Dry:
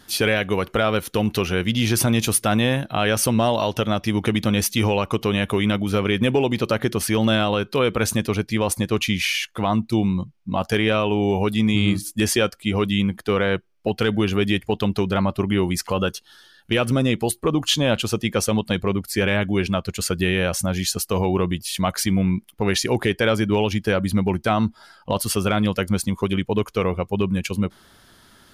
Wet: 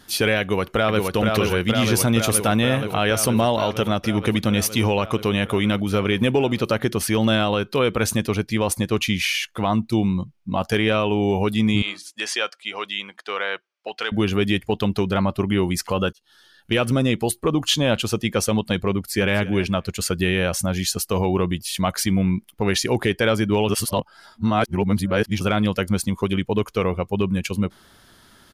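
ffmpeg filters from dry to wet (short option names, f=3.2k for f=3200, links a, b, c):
-filter_complex "[0:a]asplit=2[a][b];[b]afade=t=in:st=0.41:d=0.01,afade=t=out:st=1.05:d=0.01,aecho=0:1:470|940|1410|1880|2350|2820|3290|3760|4230|4700|5170|5640:0.707946|0.566357|0.453085|0.362468|0.289975|0.23198|0.185584|0.148467|0.118774|0.0950189|0.0760151|0.0608121[c];[a][c]amix=inputs=2:normalize=0,asettb=1/sr,asplit=3[d][e][f];[d]atrim=end=11.824[g];[e]atrim=start=11.82:end=14.12,asetpts=PTS-STARTPTS,afade=t=in:d=0.004:c=qsin,afade=t=out:st=2.296:d=0.004:c=qsin,highpass=780,lowpass=6.1k[h];[f]atrim=start=14.116[i];[g][h]acrossfade=d=0.004:c1=hsin:c2=qsin[j];[j][i]acrossfade=d=0.004:c1=qsin:c2=hsin,asplit=2[k][l];[l]afade=t=in:st=18.93:d=0.01,afade=t=out:st=19.39:d=0.01,aecho=0:1:250|500:0.149624|0.0149624[m];[k][m]amix=inputs=2:normalize=0,asplit=4[n][o][p][q];[n]atrim=end=16.13,asetpts=PTS-STARTPTS,afade=t=out:st=16.126:d=0.004:c=hsin[r];[o]atrim=start=16.13:end=23.692,asetpts=PTS-STARTPTS,afade=t=in:d=0.63:c=qsin[s];[p]atrim=start=23.688:end=25.412,asetpts=PTS-STARTPTS,areverse[t];[q]atrim=start=25.408[u];[r][s]concat=n=2:v=0:a=1[v];[v][t]acrossfade=d=0.004:c1=hsin:c2=hsin[w];[w][u]acrossfade=d=0.004:c1=hsin:c2=hsin"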